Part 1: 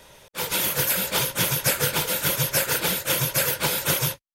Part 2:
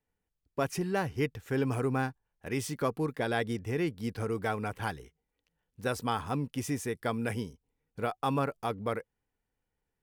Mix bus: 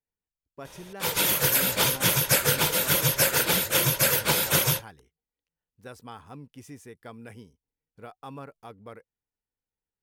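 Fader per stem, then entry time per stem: +0.5, −11.5 decibels; 0.65, 0.00 seconds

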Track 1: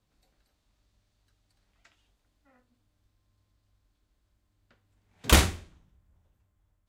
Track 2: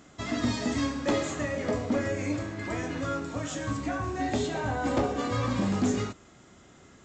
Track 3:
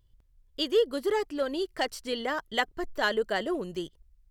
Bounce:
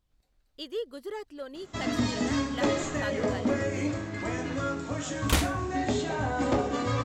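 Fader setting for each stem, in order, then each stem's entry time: −6.0, +0.5, −10.0 decibels; 0.00, 1.55, 0.00 seconds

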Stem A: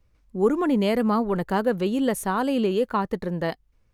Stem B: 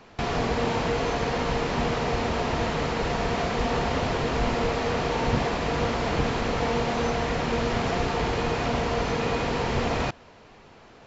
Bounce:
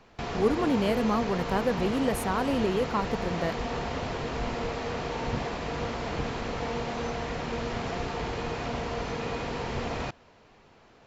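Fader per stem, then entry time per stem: −4.5, −6.5 decibels; 0.00, 0.00 seconds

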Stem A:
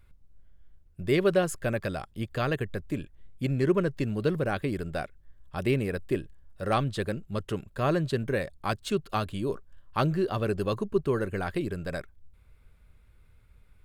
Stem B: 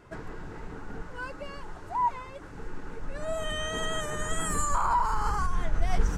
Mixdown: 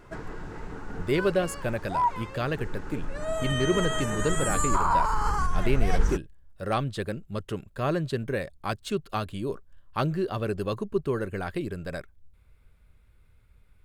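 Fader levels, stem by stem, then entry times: −1.0, +2.0 decibels; 0.00, 0.00 seconds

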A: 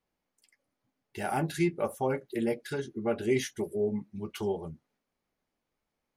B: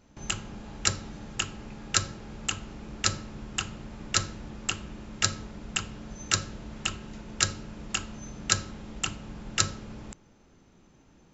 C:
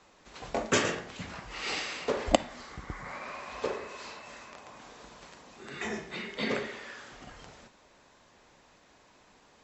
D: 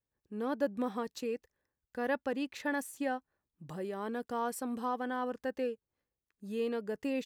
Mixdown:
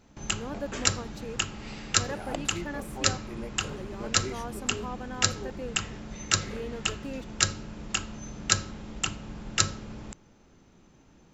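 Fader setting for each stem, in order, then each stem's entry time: −10.5, +1.0, −12.5, −4.0 decibels; 0.95, 0.00, 0.00, 0.00 seconds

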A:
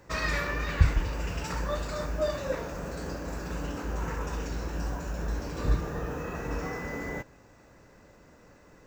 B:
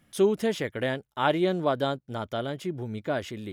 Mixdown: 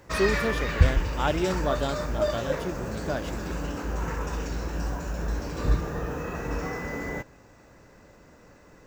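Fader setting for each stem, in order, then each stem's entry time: +2.5, −2.5 decibels; 0.00, 0.00 seconds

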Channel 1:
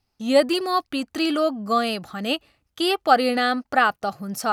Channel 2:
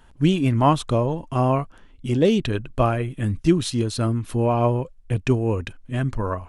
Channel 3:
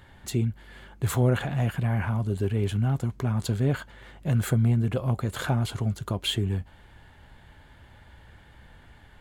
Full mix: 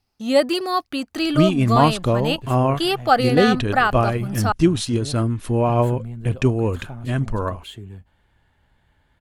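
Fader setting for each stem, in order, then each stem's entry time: +0.5, +1.5, −10.5 decibels; 0.00, 1.15, 1.40 seconds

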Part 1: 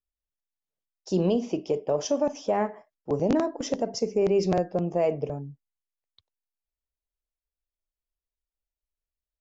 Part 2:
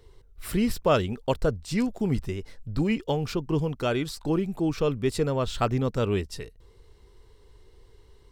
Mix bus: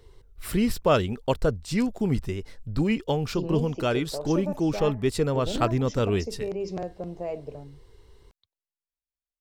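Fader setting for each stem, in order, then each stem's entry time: −8.5, +1.0 decibels; 2.25, 0.00 seconds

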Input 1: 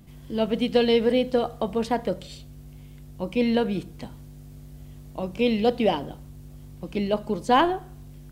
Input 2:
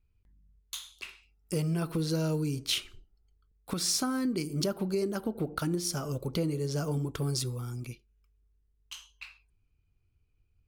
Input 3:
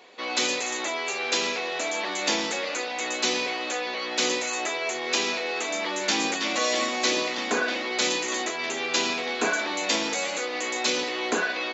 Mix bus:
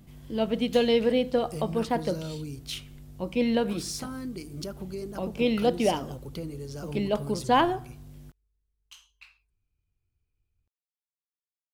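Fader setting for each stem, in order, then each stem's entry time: −2.5 dB, −6.5 dB, muted; 0.00 s, 0.00 s, muted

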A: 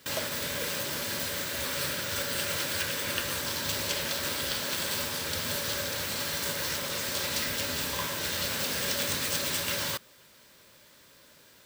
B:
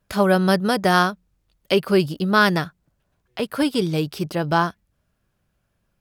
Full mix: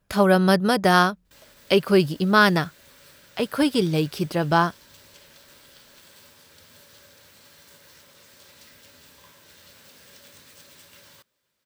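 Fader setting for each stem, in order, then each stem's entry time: −20.0, 0.0 decibels; 1.25, 0.00 seconds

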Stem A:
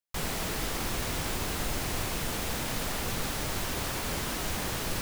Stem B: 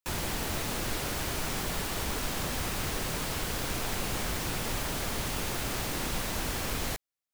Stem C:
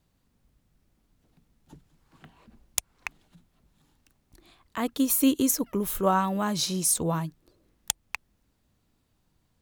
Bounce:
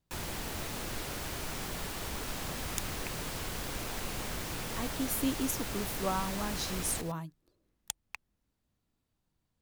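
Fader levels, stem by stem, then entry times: −16.5, −5.5, −10.0 decibels; 2.10, 0.05, 0.00 seconds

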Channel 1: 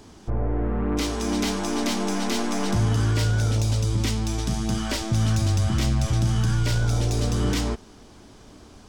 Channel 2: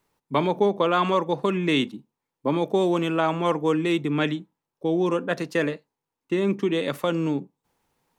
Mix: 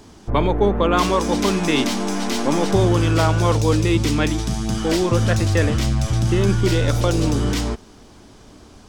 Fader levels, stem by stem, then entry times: +2.5, +2.5 decibels; 0.00, 0.00 seconds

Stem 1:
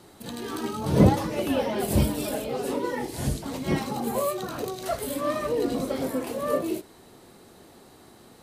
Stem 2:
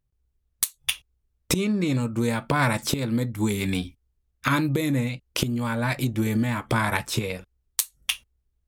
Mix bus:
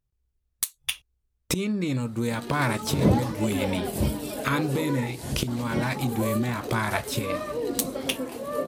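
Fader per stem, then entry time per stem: −3.5, −3.0 decibels; 2.05, 0.00 seconds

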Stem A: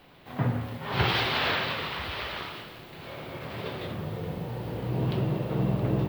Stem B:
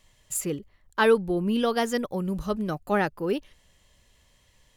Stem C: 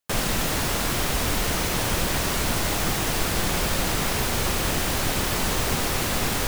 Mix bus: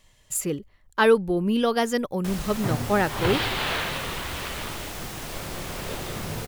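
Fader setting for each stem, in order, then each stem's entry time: −0.5, +2.0, −11.0 decibels; 2.25, 0.00, 2.15 seconds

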